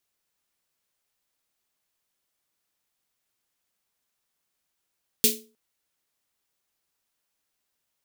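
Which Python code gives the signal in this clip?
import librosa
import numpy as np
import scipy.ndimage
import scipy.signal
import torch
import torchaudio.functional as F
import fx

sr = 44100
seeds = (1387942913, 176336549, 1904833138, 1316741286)

y = fx.drum_snare(sr, seeds[0], length_s=0.31, hz=230.0, second_hz=430.0, noise_db=10.5, noise_from_hz=2700.0, decay_s=0.39, noise_decay_s=0.26)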